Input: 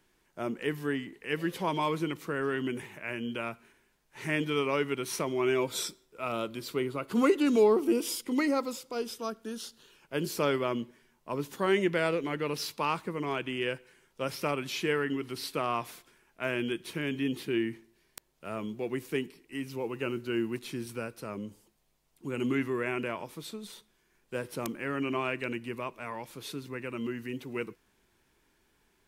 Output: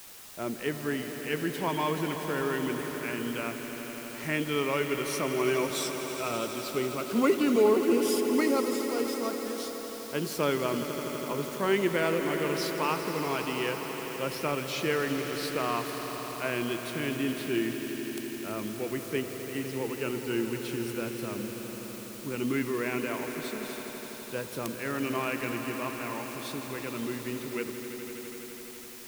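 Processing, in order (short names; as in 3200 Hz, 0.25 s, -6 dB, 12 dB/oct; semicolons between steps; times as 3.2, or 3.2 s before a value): requantised 8-bit, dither triangular; on a send: swelling echo 83 ms, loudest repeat 5, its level -13 dB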